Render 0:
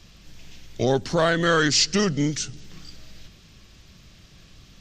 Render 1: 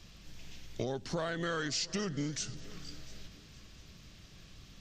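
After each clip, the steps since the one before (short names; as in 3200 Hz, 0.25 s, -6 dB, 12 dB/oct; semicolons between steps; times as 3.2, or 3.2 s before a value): compressor 6:1, threshold -28 dBFS, peak gain reduction 12 dB; multi-head echo 0.232 s, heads second and third, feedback 41%, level -21.5 dB; gain -4.5 dB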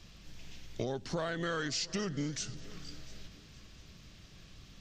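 high shelf 9300 Hz -4 dB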